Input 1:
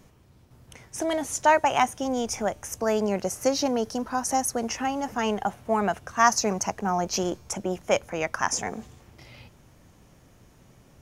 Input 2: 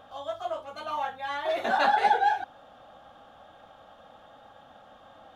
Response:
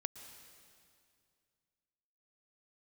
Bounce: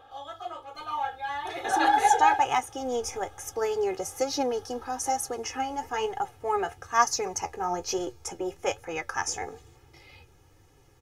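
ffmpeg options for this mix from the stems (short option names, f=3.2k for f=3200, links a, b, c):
-filter_complex "[0:a]flanger=delay=6.9:depth=6.6:regen=56:speed=1.1:shape=triangular,adelay=750,volume=-2dB[a];[1:a]volume=-4dB[b];[a][b]amix=inputs=2:normalize=0,bandreject=f=60:t=h:w=6,bandreject=f=120:t=h:w=6,aecho=1:1:2.4:0.94"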